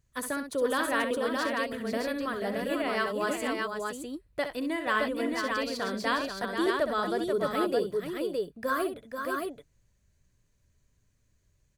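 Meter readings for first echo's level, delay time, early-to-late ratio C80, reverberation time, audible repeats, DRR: -8.5 dB, 65 ms, none, none, 3, none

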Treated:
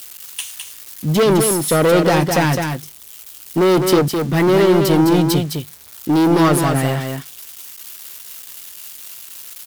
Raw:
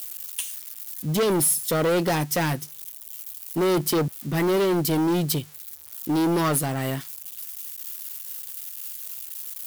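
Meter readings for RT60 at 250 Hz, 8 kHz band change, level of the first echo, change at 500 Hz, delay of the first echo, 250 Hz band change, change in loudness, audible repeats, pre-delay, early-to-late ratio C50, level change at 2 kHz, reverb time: none, +3.0 dB, -5.5 dB, +9.0 dB, 0.209 s, +9.0 dB, +9.5 dB, 1, none, none, +8.5 dB, none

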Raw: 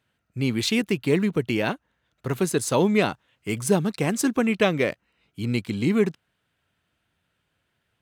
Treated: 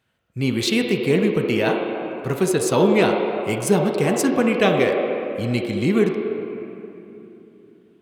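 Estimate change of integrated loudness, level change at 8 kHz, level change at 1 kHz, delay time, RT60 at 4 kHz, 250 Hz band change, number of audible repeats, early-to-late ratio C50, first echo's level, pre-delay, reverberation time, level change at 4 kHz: +3.5 dB, +2.0 dB, +6.0 dB, none, 1.9 s, +3.5 dB, none, 2.5 dB, none, 3 ms, 3.0 s, +3.0 dB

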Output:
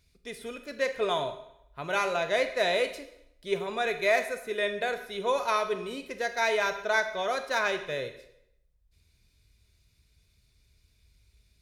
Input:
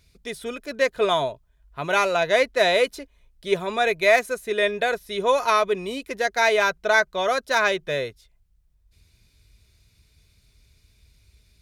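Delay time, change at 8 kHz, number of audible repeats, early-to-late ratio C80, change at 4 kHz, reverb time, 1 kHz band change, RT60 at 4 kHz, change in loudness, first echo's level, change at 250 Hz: none, -7.0 dB, none, 13.0 dB, -7.0 dB, 0.80 s, -7.0 dB, 0.70 s, -7.0 dB, none, -7.0 dB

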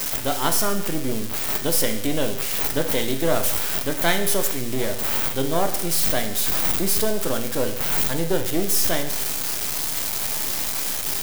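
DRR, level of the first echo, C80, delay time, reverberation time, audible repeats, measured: 5.0 dB, none, 11.5 dB, none, 0.90 s, none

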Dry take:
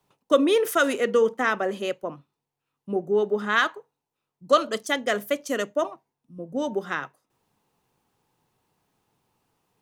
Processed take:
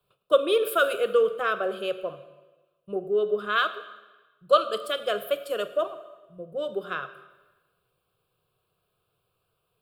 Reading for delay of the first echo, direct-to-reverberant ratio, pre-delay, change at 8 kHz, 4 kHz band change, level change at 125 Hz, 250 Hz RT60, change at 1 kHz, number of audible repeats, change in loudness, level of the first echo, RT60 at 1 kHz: none, 11.0 dB, 21 ms, -8.0 dB, 0.0 dB, n/a, 1.2 s, -1.0 dB, none, -1.5 dB, none, 1.2 s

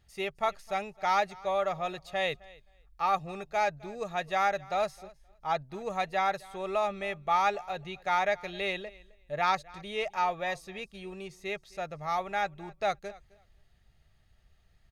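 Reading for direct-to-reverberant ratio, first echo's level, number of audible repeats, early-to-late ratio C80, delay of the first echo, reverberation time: none, -22.5 dB, 1, none, 0.262 s, none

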